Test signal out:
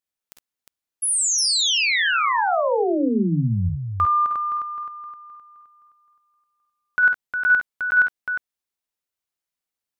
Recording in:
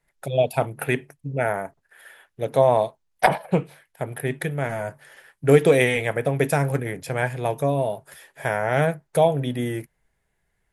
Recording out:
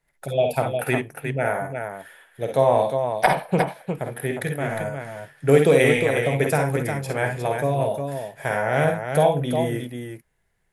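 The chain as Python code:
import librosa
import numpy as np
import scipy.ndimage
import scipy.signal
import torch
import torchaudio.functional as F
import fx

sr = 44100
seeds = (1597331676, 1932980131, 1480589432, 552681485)

y = fx.echo_multitap(x, sr, ms=(48, 52, 65, 357), db=(-14.5, -7.0, -8.5, -6.0))
y = y * librosa.db_to_amplitude(-1.0)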